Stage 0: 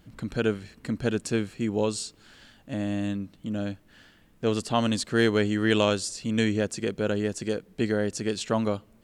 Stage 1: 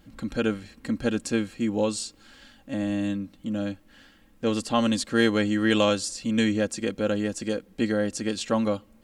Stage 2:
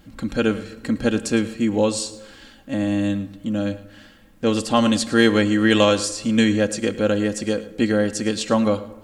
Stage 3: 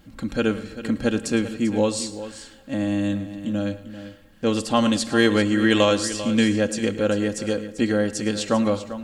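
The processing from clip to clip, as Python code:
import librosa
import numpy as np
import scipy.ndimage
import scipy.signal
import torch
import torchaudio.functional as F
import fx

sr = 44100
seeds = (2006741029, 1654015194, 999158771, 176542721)

y1 = x + 0.55 * np.pad(x, (int(3.7 * sr / 1000.0), 0))[:len(x)]
y2 = y1 + 10.0 ** (-17.5 / 20.0) * np.pad(y1, (int(109 * sr / 1000.0), 0))[:len(y1)]
y2 = fx.rev_plate(y2, sr, seeds[0], rt60_s=1.4, hf_ratio=0.55, predelay_ms=0, drr_db=15.0)
y2 = y2 * librosa.db_to_amplitude(5.5)
y3 = y2 + 10.0 ** (-13.0 / 20.0) * np.pad(y2, (int(393 * sr / 1000.0), 0))[:len(y2)]
y3 = y3 * librosa.db_to_amplitude(-2.0)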